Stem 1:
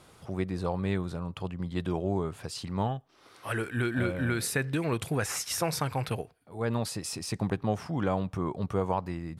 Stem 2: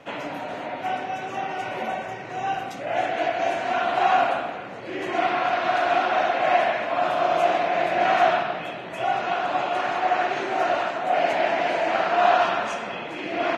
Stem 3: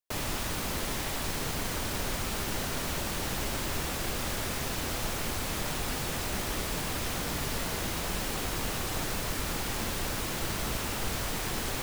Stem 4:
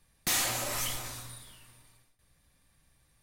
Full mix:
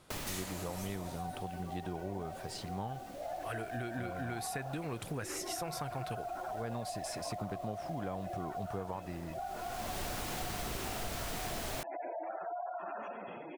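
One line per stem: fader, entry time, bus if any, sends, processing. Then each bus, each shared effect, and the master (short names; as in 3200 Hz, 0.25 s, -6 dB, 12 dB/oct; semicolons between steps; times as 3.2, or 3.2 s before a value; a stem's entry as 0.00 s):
-5.5 dB, 0.00 s, no send, dry
-10.5 dB, 0.35 s, no send, spectral gate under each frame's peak -15 dB strong; LPF 1100 Hz 6 dB/oct; compressor, threshold -25 dBFS, peak gain reduction 8.5 dB
-0.5 dB, 0.00 s, no send, auto duck -22 dB, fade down 0.85 s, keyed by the first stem
-10.0 dB, 0.00 s, no send, dry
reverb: off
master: compressor 4:1, threshold -36 dBFS, peak gain reduction 8 dB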